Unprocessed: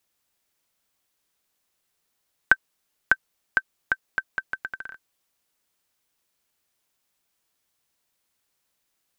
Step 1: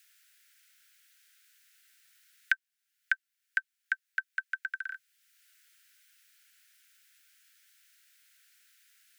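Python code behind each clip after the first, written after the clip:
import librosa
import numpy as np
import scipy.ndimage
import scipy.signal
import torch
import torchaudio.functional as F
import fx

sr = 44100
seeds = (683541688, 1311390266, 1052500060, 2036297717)

y = scipy.signal.sosfilt(scipy.signal.butter(16, 1400.0, 'highpass', fs=sr, output='sos'), x)
y = fx.band_squash(y, sr, depth_pct=70)
y = F.gain(torch.from_numpy(y), -4.5).numpy()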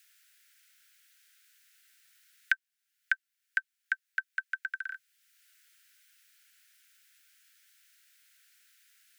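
y = x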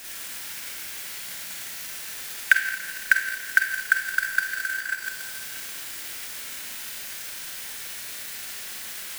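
y = x + 0.5 * 10.0 ** (-35.0 / 20.0) * np.sign(x)
y = fx.rev_schroeder(y, sr, rt60_s=2.1, comb_ms=28, drr_db=-4.5)
y = fx.transient(y, sr, attack_db=11, sustain_db=-2)
y = F.gain(torch.from_numpy(y), -1.5).numpy()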